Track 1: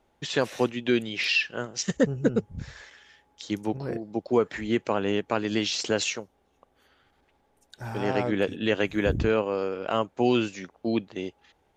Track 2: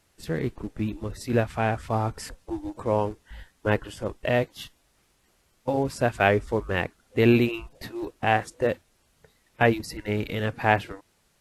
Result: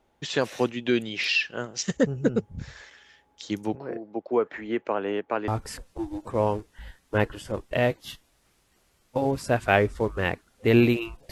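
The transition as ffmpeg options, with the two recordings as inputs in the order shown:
-filter_complex "[0:a]asettb=1/sr,asplit=3[s0][s1][s2];[s0]atrim=end=3.754[s3];[s1]atrim=start=3.75:end=5.48,asetpts=PTS-STARTPTS,afade=t=in:d=0.004:c=qsin,afade=t=out:st=1.726:d=0.004:c=qsin,acrossover=split=260 2600:gain=0.224 1 0.141[s4][s5][s6];[s4][s5][s6]amix=inputs=3:normalize=0[s7];[s2]atrim=start=5.476[s8];[s3][s7]acrossfade=d=0.004:c1=hsin:c2=qsin[s9];[s9][s8]acrossfade=d=0.004:c1=qsin:c2=hsin,apad=whole_dur=11.31,atrim=end=11.31,atrim=end=5.482[s10];[1:a]atrim=start=1.998:end=7.83[s11];[s10][s11]acrossfade=d=0.004:c1=hsin:c2=hsin"

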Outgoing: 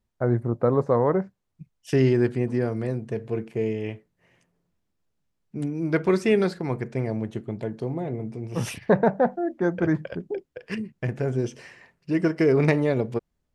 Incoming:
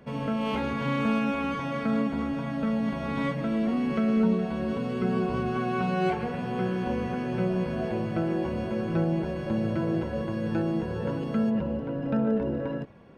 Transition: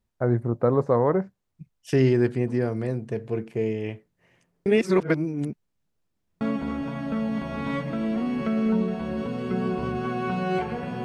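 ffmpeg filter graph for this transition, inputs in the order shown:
-filter_complex "[0:a]apad=whole_dur=11.04,atrim=end=11.04,asplit=2[s0][s1];[s0]atrim=end=4.662[s2];[s1]atrim=start=4.658:end=6.412,asetpts=PTS-STARTPTS,areverse[s3];[1:a]atrim=start=1.918:end=6.55[s4];[s2][s3]acrossfade=d=0.004:c1=hsin:c2=hsin[s5];[s5][s4]acrossfade=d=0.004:c1=hsin:c2=hsin"

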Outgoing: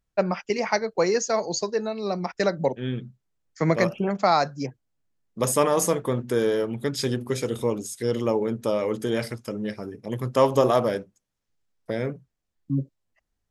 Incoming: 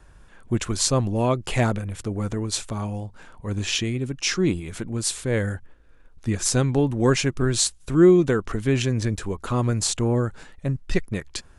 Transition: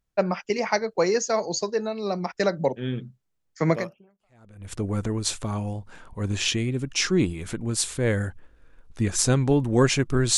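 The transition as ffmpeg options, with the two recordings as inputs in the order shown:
-filter_complex "[0:a]apad=whole_dur=10.37,atrim=end=10.37,atrim=end=4.72,asetpts=PTS-STARTPTS[s0];[1:a]atrim=start=1.01:end=7.64,asetpts=PTS-STARTPTS[s1];[s0][s1]acrossfade=d=0.98:c1=exp:c2=exp"

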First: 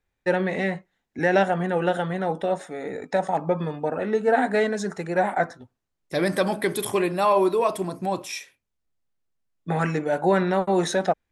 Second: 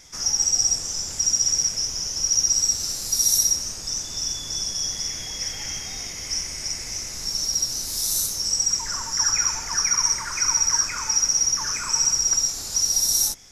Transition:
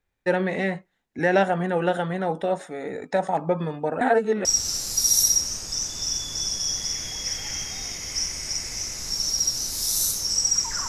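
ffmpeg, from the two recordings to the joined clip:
-filter_complex "[0:a]apad=whole_dur=10.88,atrim=end=10.88,asplit=2[s0][s1];[s0]atrim=end=4.012[s2];[s1]atrim=start=4.008:end=4.452,asetpts=PTS-STARTPTS,areverse[s3];[1:a]atrim=start=2.598:end=9.03[s4];[s2][s3]acrossfade=d=0.004:c1=hsin:c2=hsin[s5];[s5][s4]acrossfade=d=0.004:c1=hsin:c2=hsin"

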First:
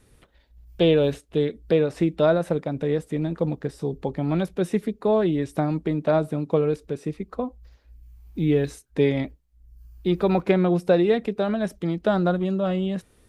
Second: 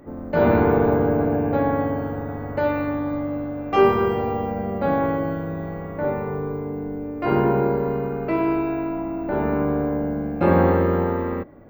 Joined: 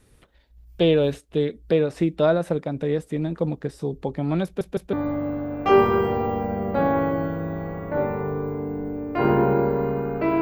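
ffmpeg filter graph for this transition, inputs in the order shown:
-filter_complex "[0:a]apad=whole_dur=10.41,atrim=end=10.41,asplit=3[s0][s1][s2];[s0]atrim=end=4.612[s3];[s1]atrim=start=4.448:end=4.612[s4];[s2]atrim=start=4.448:end=4.612[s5];[1:a]atrim=start=2.998:end=8.48[s6];[s3][s4]acrossfade=d=0.004:c1=hsin:c2=hsin[s7];[s7][s5]acrossfade=d=0.004:c1=hsin:c2=hsin[s8];[s8][s6]acrossfade=d=0.004:c1=hsin:c2=hsin"

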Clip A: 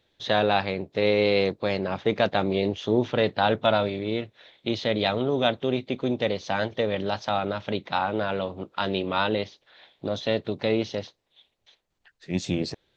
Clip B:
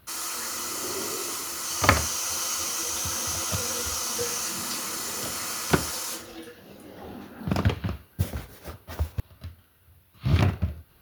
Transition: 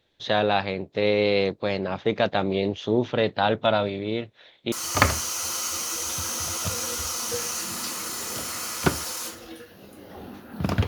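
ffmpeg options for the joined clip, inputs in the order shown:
-filter_complex "[0:a]apad=whole_dur=10.87,atrim=end=10.87,atrim=end=4.722[s0];[1:a]atrim=start=1.588:end=7.74[s1];[s0][s1]acrossfade=d=0.004:c1=hsin:c2=hsin"

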